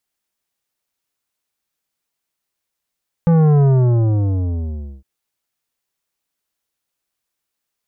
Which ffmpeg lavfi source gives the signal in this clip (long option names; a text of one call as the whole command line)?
ffmpeg -f lavfi -i "aevalsrc='0.299*clip((1.76-t)/1.42,0,1)*tanh(3.76*sin(2*PI*170*1.76/log(65/170)*(exp(log(65/170)*t/1.76)-1)))/tanh(3.76)':duration=1.76:sample_rate=44100" out.wav